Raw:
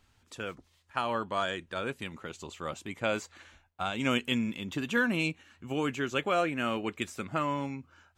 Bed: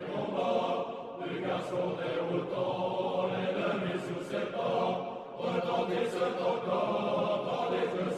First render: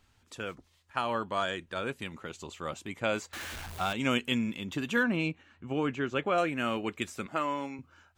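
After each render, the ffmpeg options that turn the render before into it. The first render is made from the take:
-filter_complex "[0:a]asettb=1/sr,asplit=3[a][b][c];[a]atrim=end=3.334[d];[b]atrim=start=3.33:end=3.93,asetpts=PTS-STARTPTS,afade=t=in:d=0.004:c=qsin,afade=t=out:st=0.596:d=0.004:c=qsin,aeval=exprs='val(0)+0.5*0.0168*sgn(val(0))':c=same[e];[c]atrim=start=3.926[f];[d][e]acrossfade=d=0.004:c1=hsin:c2=qsin[g];[g][f]acrossfade=d=0.004:c1=qsin:c2=hsin,asettb=1/sr,asplit=3[h][i][j];[h]atrim=end=5.034[k];[i]atrim=start=5.03:end=6.38,asetpts=PTS-STARTPTS,afade=t=in:d=0.004:c=qsin,afade=t=out:st=1.346:d=0.004:c=qsin,aemphasis=mode=reproduction:type=75fm[l];[j]atrim=start=6.376[m];[k][l]acrossfade=d=0.004:c1=hsin:c2=qsin[n];[n][m]acrossfade=d=0.004:c1=qsin:c2=hsin,asettb=1/sr,asplit=3[o][p][q];[o]atrim=end=7.264[r];[p]atrim=start=7.26:end=7.79,asetpts=PTS-STARTPTS,afade=t=in:d=0.004:c=qsin,afade=t=out:st=0.526:d=0.004:c=qsin,highpass=270[s];[q]atrim=start=7.786[t];[r][s]acrossfade=d=0.004:c1=hsin:c2=qsin[u];[u][t]acrossfade=d=0.004:c1=qsin:c2=hsin"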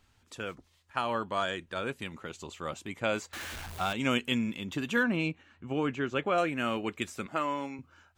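-af anull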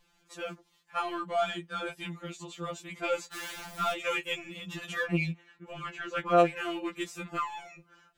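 -filter_complex "[0:a]asplit=2[a][b];[b]asoftclip=type=hard:threshold=-30.5dB,volume=-9.5dB[c];[a][c]amix=inputs=2:normalize=0,afftfilt=real='re*2.83*eq(mod(b,8),0)':imag='im*2.83*eq(mod(b,8),0)':win_size=2048:overlap=0.75"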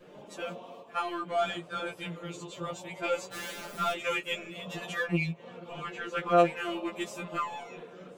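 -filter_complex "[1:a]volume=-15.5dB[a];[0:a][a]amix=inputs=2:normalize=0"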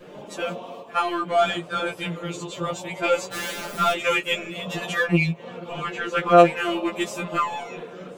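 -af "volume=9dB"

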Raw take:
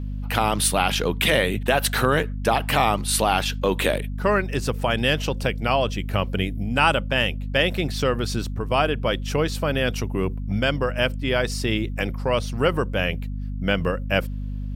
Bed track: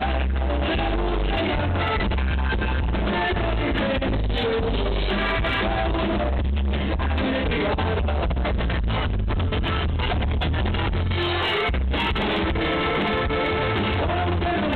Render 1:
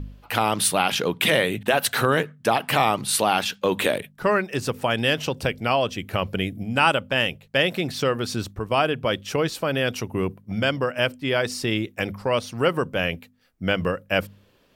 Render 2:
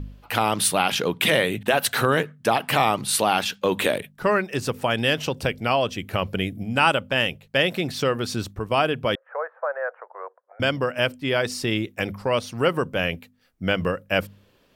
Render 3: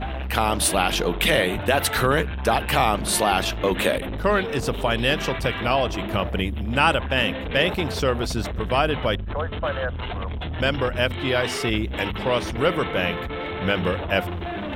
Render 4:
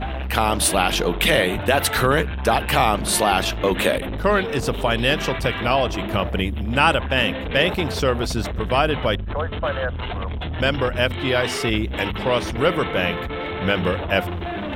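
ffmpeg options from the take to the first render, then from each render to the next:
-af "bandreject=f=50:t=h:w=4,bandreject=f=100:t=h:w=4,bandreject=f=150:t=h:w=4,bandreject=f=200:t=h:w=4,bandreject=f=250:t=h:w=4"
-filter_complex "[0:a]asettb=1/sr,asplit=3[a][b][c];[a]atrim=end=9.154[d];[b]atrim=start=9.15:end=10.6,asetpts=PTS-STARTPTS,afade=t=in:d=0.004:c=qsin,afade=t=out:st=1.446:d=0.004:c=qsin,asuperpass=centerf=940:order=12:qfactor=0.78[e];[c]atrim=start=10.596[f];[d][e]acrossfade=d=0.004:c1=hsin:c2=qsin[g];[g][f]acrossfade=d=0.004:c1=qsin:c2=hsin"
-filter_complex "[1:a]volume=-7dB[a];[0:a][a]amix=inputs=2:normalize=0"
-af "volume=2dB"

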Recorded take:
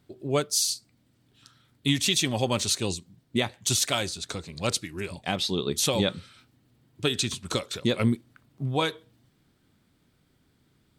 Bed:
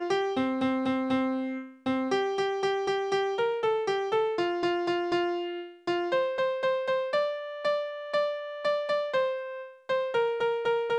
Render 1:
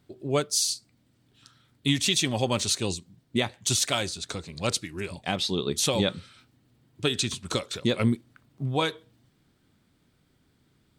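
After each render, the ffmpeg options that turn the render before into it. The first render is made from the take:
-af "equalizer=f=12k:t=o:w=0.2:g=-6"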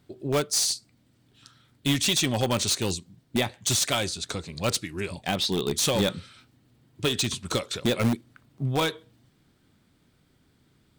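-filter_complex "[0:a]aeval=exprs='0.316*(cos(1*acos(clip(val(0)/0.316,-1,1)))-cos(1*PI/2))+0.01*(cos(2*acos(clip(val(0)/0.316,-1,1)))-cos(2*PI/2))+0.0224*(cos(3*acos(clip(val(0)/0.316,-1,1)))-cos(3*PI/2))+0.01*(cos(5*acos(clip(val(0)/0.316,-1,1)))-cos(5*PI/2))+0.002*(cos(8*acos(clip(val(0)/0.316,-1,1)))-cos(8*PI/2))':c=same,asplit=2[a][b];[b]aeval=exprs='(mod(10*val(0)+1,2)-1)/10':c=same,volume=-8.5dB[c];[a][c]amix=inputs=2:normalize=0"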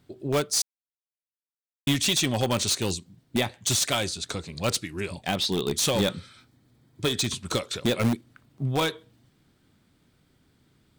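-filter_complex "[0:a]asettb=1/sr,asplit=3[a][b][c];[a]atrim=end=6.174[d];[b]atrim=start=6.17:end=7.28,asetpts=PTS-STARTPTS,afade=t=in:d=0.004:c=qsin,afade=t=out:st=1.106:d=0.004:c=qsin,bandreject=f=2.8k:w=7.3[e];[c]atrim=start=7.276[f];[d][e]acrossfade=d=0.004:c1=hsin:c2=qsin[g];[g][f]acrossfade=d=0.004:c1=qsin:c2=hsin,asplit=3[h][i][j];[h]atrim=end=0.62,asetpts=PTS-STARTPTS,afade=t=out:st=0.616:d=0.004:c=hsin[k];[i]atrim=start=0.62:end=1.87,asetpts=PTS-STARTPTS,volume=0[l];[j]atrim=start=1.87,asetpts=PTS-STARTPTS,afade=t=in:d=0.004:c=hsin[m];[k][l][m]concat=n=3:v=0:a=1"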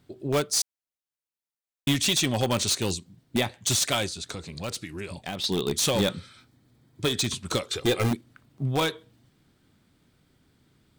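-filter_complex "[0:a]asettb=1/sr,asplit=3[a][b][c];[a]atrim=end=4.064[d];[b]atrim=start=4.06:end=5.44,asetpts=PTS-STARTPTS,afade=t=in:d=0.004:c=qsin,afade=t=out:st=1.376:d=0.004:c=qsin,acompressor=threshold=-32dB:ratio=2.5:attack=3.2:release=140:knee=1:detection=peak[e];[c]atrim=start=5.436[f];[d][e]acrossfade=d=0.004:c1=hsin:c2=qsin[g];[g][f]acrossfade=d=0.004:c1=qsin:c2=hsin,asettb=1/sr,asplit=3[h][i][j];[h]atrim=end=7.694[k];[i]atrim=start=7.69:end=8.11,asetpts=PTS-STARTPTS,afade=t=in:d=0.004:c=qsin,afade=t=out:st=0.416:d=0.004:c=qsin,aecho=1:1:2.5:0.65,atrim=end_sample=18522[l];[j]atrim=start=8.106[m];[k][l]acrossfade=d=0.004:c1=hsin:c2=qsin[n];[n][m]acrossfade=d=0.004:c1=qsin:c2=hsin"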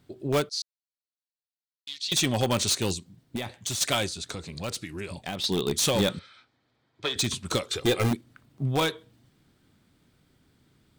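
-filter_complex "[0:a]asettb=1/sr,asplit=3[a][b][c];[a]atrim=end=0.494[d];[b]atrim=start=0.49:end=2.12,asetpts=PTS-STARTPTS,afade=t=in:d=0.004:c=qsin,afade=t=out:st=1.626:d=0.004:c=qsin,bandpass=f=4.3k:t=q:w=5.1[e];[c]atrim=start=2.116[f];[d][e]acrossfade=d=0.004:c1=hsin:c2=qsin[g];[g][f]acrossfade=d=0.004:c1=qsin:c2=hsin,asettb=1/sr,asplit=3[h][i][j];[h]atrim=end=2.924[k];[i]atrim=start=2.92:end=3.81,asetpts=PTS-STARTPTS,afade=t=in:d=0.004:c=qsin,afade=t=out:st=0.886:d=0.004:c=qsin,acompressor=threshold=-27dB:ratio=10:attack=3.2:release=140:knee=1:detection=peak[l];[j]atrim=start=3.806[m];[k][l]acrossfade=d=0.004:c1=hsin:c2=qsin[n];[n][m]acrossfade=d=0.004:c1=qsin:c2=hsin,asettb=1/sr,asplit=3[o][p][q];[o]atrim=end=6.194[r];[p]atrim=start=6.19:end=7.16,asetpts=PTS-STARTPTS,afade=t=in:d=0.004:c=qsin,afade=t=out:st=0.966:d=0.004:c=qsin,acrossover=split=460 5100:gain=0.178 1 0.0891[s][t][u];[s][t][u]amix=inputs=3:normalize=0[v];[q]atrim=start=7.156[w];[r][v]acrossfade=d=0.004:c1=hsin:c2=qsin[x];[x][w]acrossfade=d=0.004:c1=qsin:c2=hsin"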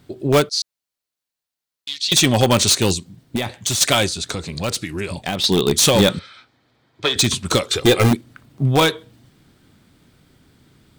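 -af "volume=10dB,alimiter=limit=-1dB:level=0:latency=1"

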